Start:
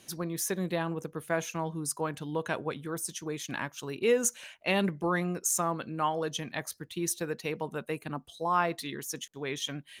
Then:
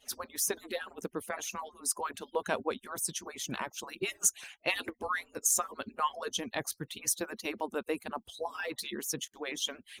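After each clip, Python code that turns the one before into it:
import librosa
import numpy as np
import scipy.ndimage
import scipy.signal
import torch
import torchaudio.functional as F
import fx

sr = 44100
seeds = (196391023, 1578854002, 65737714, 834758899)

y = fx.hpss_only(x, sr, part='percussive')
y = fx.dynamic_eq(y, sr, hz=1900.0, q=1.3, threshold_db=-49.0, ratio=4.0, max_db=-4)
y = y * librosa.db_to_amplitude(2.5)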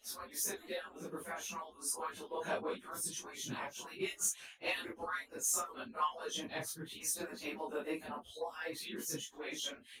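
y = fx.phase_scramble(x, sr, seeds[0], window_ms=100)
y = 10.0 ** (-17.0 / 20.0) * np.tanh(y / 10.0 ** (-17.0 / 20.0))
y = y * librosa.db_to_amplitude(-5.0)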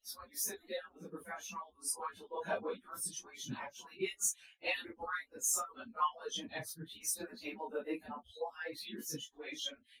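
y = fx.bin_expand(x, sr, power=1.5)
y = y * librosa.db_to_amplitude(2.5)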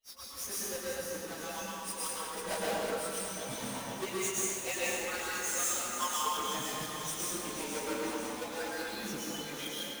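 y = fx.halfwave_hold(x, sr)
y = fx.echo_alternate(y, sr, ms=246, hz=2400.0, feedback_pct=77, wet_db=-4.5)
y = fx.rev_plate(y, sr, seeds[1], rt60_s=1.4, hf_ratio=1.0, predelay_ms=100, drr_db=-5.5)
y = y * librosa.db_to_amplitude(-6.0)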